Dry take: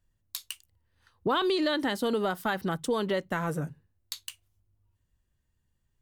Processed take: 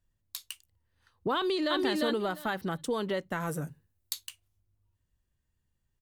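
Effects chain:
0:01.35–0:01.78: delay throw 350 ms, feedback 15%, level −1.5 dB
0:03.40–0:04.27: high-shelf EQ 6,200 Hz +10.5 dB
level −3 dB

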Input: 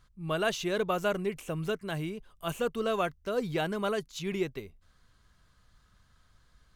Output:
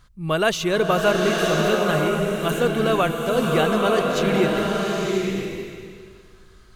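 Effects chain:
slow-attack reverb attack 980 ms, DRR −0.5 dB
level +9 dB

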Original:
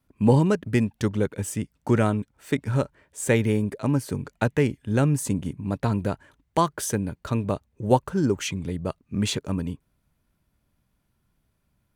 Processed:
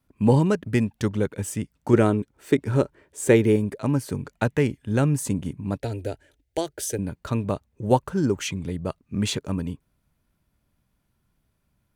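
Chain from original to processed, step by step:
0:01.93–0:03.56: parametric band 370 Hz +9.5 dB 0.71 octaves
0:05.78–0:06.99: phaser with its sweep stopped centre 450 Hz, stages 4

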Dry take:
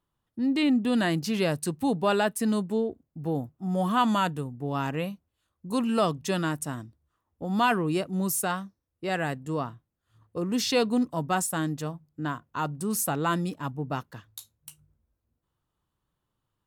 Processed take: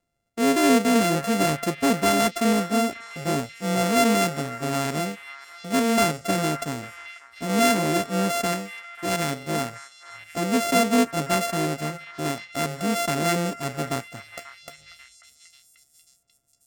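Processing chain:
samples sorted by size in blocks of 64 samples
octave-band graphic EQ 250/500/2,000/8,000 Hz +6/+4/+4/+6 dB
echo through a band-pass that steps 539 ms, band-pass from 1,500 Hz, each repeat 0.7 octaves, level −10 dB

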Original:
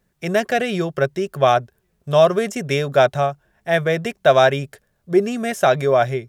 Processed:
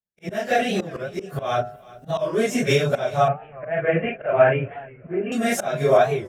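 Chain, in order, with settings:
random phases in long frames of 100 ms
camcorder AGC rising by 15 dB per second
volume swells 260 ms
parametric band 620 Hz +4 dB 0.26 octaves
repeating echo 372 ms, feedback 36%, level −21.5 dB
downward expander −47 dBFS
0:03.28–0:05.32: Butterworth low-pass 2,900 Hz 96 dB per octave
hum removal 103.3 Hz, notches 14
wow of a warped record 45 rpm, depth 160 cents
level −2 dB

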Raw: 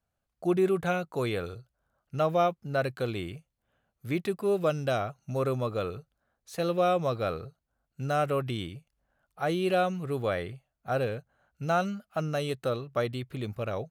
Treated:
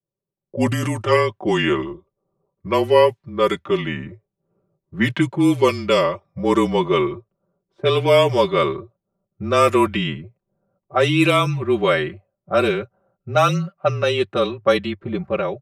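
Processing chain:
gliding playback speed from 79% → 99%
low-pass that shuts in the quiet parts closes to 410 Hz, open at −22 dBFS
high-pass filter 150 Hz 12 dB per octave
high-shelf EQ 4,400 Hz +5.5 dB
comb filter 5 ms, depth 85%
dynamic equaliser 3,000 Hz, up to +4 dB, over −45 dBFS, Q 0.76
automatic gain control gain up to 13 dB
frequency shifter −29 Hz
level −1 dB

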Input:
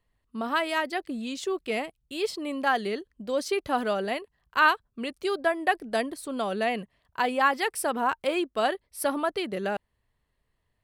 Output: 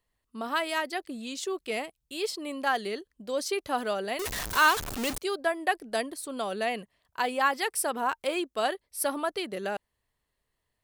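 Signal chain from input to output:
0:04.19–0:05.18: converter with a step at zero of −25 dBFS
bass and treble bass −5 dB, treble +6 dB
level −2.5 dB

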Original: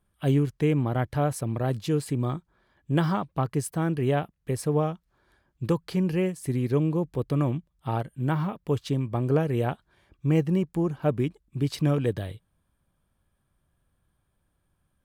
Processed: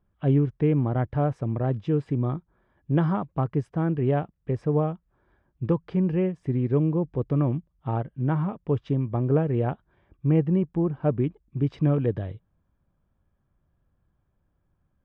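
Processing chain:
head-to-tape spacing loss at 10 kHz 40 dB
notch filter 4,300 Hz, Q 6.7
level +2.5 dB

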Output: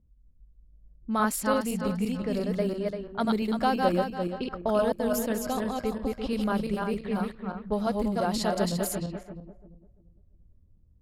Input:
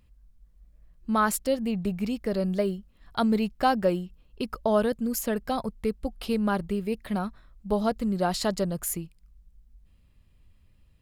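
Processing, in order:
feedback delay that plays each chunk backwards 171 ms, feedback 55%, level −2 dB
low-pass that shuts in the quiet parts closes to 390 Hz, open at −21.5 dBFS
level −3 dB

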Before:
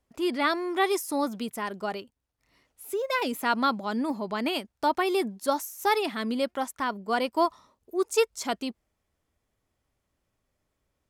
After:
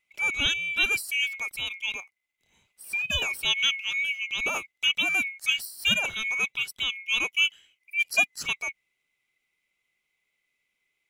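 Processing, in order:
neighbouring bands swapped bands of 2,000 Hz

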